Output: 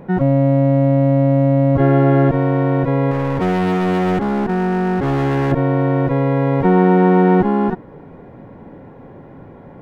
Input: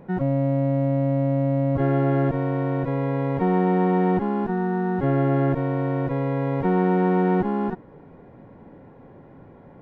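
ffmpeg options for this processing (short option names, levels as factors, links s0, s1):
-filter_complex "[0:a]asettb=1/sr,asplit=3[s0][s1][s2];[s0]atrim=end=3.114[s3];[s1]atrim=start=3.11:end=5.52,asetpts=PTS-STARTPTS,afade=t=in:d=0.004:c=qsin,afade=t=out:st=2.406:d=0.004:c=qsin,asoftclip=type=hard:threshold=0.0708[s4];[s2]atrim=start=5.516[s5];[s3][s4]acrossfade=d=0.004:c1=hsin:c2=qsin[s6];[s6][s5]acrossfade=d=0.004:c1=qsin:c2=hsin,volume=2.51"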